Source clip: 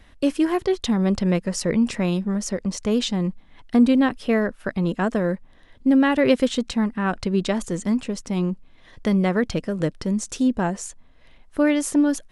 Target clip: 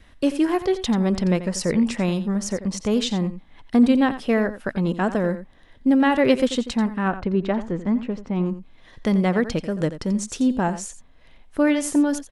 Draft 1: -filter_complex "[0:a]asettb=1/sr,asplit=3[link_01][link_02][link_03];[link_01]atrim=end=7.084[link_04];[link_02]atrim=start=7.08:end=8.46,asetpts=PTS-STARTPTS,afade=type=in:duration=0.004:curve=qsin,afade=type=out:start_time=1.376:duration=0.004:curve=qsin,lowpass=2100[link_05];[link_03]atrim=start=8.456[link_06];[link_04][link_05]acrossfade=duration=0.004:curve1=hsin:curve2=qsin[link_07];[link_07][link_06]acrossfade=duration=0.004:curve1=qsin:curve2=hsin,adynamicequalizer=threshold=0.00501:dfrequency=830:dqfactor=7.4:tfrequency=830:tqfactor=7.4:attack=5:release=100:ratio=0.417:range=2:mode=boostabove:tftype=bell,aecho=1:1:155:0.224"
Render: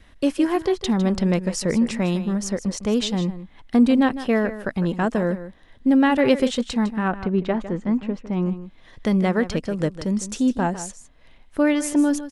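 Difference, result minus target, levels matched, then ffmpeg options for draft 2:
echo 68 ms late
-filter_complex "[0:a]asettb=1/sr,asplit=3[link_01][link_02][link_03];[link_01]atrim=end=7.084[link_04];[link_02]atrim=start=7.08:end=8.46,asetpts=PTS-STARTPTS,afade=type=in:duration=0.004:curve=qsin,afade=type=out:start_time=1.376:duration=0.004:curve=qsin,lowpass=2100[link_05];[link_03]atrim=start=8.456[link_06];[link_04][link_05]acrossfade=duration=0.004:curve1=hsin:curve2=qsin[link_07];[link_07][link_06]acrossfade=duration=0.004:curve1=qsin:curve2=hsin,adynamicequalizer=threshold=0.00501:dfrequency=830:dqfactor=7.4:tfrequency=830:tqfactor=7.4:attack=5:release=100:ratio=0.417:range=2:mode=boostabove:tftype=bell,aecho=1:1:87:0.224"

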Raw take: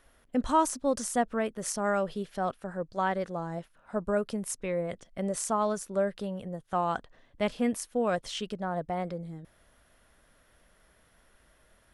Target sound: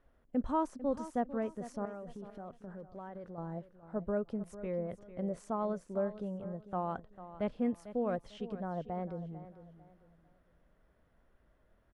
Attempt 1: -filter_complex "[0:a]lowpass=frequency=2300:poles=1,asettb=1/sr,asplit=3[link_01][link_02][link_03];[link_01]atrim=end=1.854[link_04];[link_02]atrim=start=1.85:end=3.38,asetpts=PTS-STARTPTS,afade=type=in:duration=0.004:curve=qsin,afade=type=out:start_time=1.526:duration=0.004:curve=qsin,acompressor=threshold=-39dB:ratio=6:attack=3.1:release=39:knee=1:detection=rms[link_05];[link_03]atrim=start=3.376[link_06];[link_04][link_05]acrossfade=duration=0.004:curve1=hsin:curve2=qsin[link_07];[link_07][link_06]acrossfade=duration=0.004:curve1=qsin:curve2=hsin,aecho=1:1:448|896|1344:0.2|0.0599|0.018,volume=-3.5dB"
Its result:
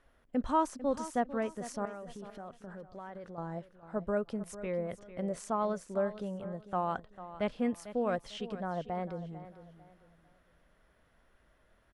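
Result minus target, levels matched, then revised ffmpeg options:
2,000 Hz band +5.0 dB
-filter_complex "[0:a]lowpass=frequency=620:poles=1,asettb=1/sr,asplit=3[link_01][link_02][link_03];[link_01]atrim=end=1.854[link_04];[link_02]atrim=start=1.85:end=3.38,asetpts=PTS-STARTPTS,afade=type=in:duration=0.004:curve=qsin,afade=type=out:start_time=1.526:duration=0.004:curve=qsin,acompressor=threshold=-39dB:ratio=6:attack=3.1:release=39:knee=1:detection=rms[link_05];[link_03]atrim=start=3.376[link_06];[link_04][link_05]acrossfade=duration=0.004:curve1=hsin:curve2=qsin[link_07];[link_07][link_06]acrossfade=duration=0.004:curve1=qsin:curve2=hsin,aecho=1:1:448|896|1344:0.2|0.0599|0.018,volume=-3.5dB"

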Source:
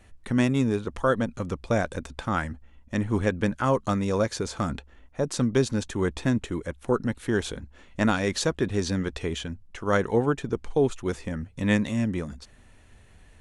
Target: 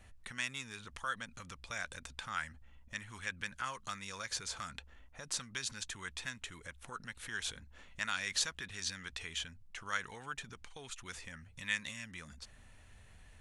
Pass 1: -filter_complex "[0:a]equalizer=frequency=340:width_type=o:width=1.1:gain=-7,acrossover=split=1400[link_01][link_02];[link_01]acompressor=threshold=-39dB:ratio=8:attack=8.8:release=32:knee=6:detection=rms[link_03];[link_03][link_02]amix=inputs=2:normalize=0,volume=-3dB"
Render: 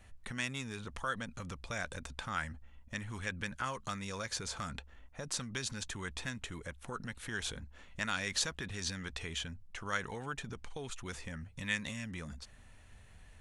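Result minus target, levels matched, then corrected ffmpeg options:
downward compressor: peak gain reduction −9.5 dB
-filter_complex "[0:a]equalizer=frequency=340:width_type=o:width=1.1:gain=-7,acrossover=split=1400[link_01][link_02];[link_01]acompressor=threshold=-50dB:ratio=8:attack=8.8:release=32:knee=6:detection=rms[link_03];[link_03][link_02]amix=inputs=2:normalize=0,volume=-3dB"

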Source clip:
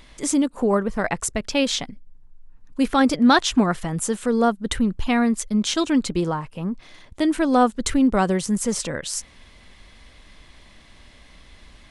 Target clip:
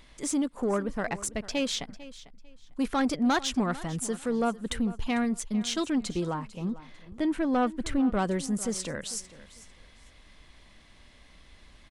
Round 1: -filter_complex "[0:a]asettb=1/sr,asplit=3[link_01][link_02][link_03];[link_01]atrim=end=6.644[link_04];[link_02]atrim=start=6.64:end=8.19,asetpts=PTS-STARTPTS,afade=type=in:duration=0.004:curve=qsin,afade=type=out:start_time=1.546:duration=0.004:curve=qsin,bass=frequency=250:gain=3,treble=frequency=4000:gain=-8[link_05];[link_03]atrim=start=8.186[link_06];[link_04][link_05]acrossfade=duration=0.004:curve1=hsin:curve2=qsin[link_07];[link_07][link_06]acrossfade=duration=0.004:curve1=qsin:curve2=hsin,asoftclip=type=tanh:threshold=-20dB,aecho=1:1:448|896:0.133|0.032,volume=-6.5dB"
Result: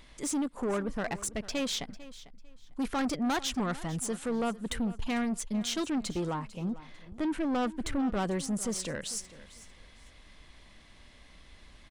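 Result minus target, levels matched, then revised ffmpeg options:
soft clipping: distortion +7 dB
-filter_complex "[0:a]asettb=1/sr,asplit=3[link_01][link_02][link_03];[link_01]atrim=end=6.644[link_04];[link_02]atrim=start=6.64:end=8.19,asetpts=PTS-STARTPTS,afade=type=in:duration=0.004:curve=qsin,afade=type=out:start_time=1.546:duration=0.004:curve=qsin,bass=frequency=250:gain=3,treble=frequency=4000:gain=-8[link_05];[link_03]atrim=start=8.186[link_06];[link_04][link_05]acrossfade=duration=0.004:curve1=hsin:curve2=qsin[link_07];[link_07][link_06]acrossfade=duration=0.004:curve1=qsin:curve2=hsin,asoftclip=type=tanh:threshold=-12.5dB,aecho=1:1:448|896:0.133|0.032,volume=-6.5dB"

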